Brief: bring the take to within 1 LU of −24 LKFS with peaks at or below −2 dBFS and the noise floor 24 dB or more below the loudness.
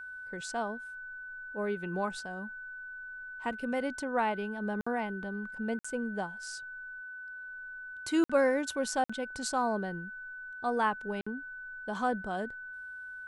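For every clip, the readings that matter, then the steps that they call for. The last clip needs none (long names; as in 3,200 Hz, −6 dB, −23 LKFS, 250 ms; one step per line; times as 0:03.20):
number of dropouts 5; longest dropout 55 ms; interfering tone 1,500 Hz; level of the tone −41 dBFS; integrated loudness −34.5 LKFS; sample peak −15.0 dBFS; target loudness −24.0 LKFS
→ repair the gap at 0:04.81/0:05.79/0:08.24/0:09.04/0:11.21, 55 ms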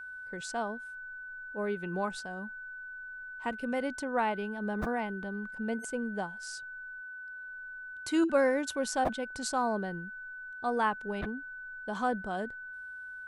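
number of dropouts 0; interfering tone 1,500 Hz; level of the tone −41 dBFS
→ notch filter 1,500 Hz, Q 30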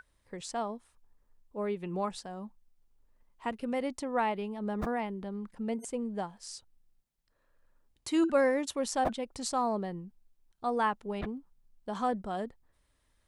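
interfering tone none found; integrated loudness −33.5 LKFS; sample peak −15.5 dBFS; target loudness −24.0 LKFS
→ level +9.5 dB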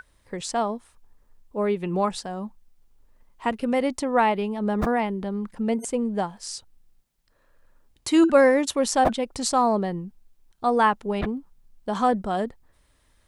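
integrated loudness −24.0 LKFS; sample peak −6.0 dBFS; background noise floor −64 dBFS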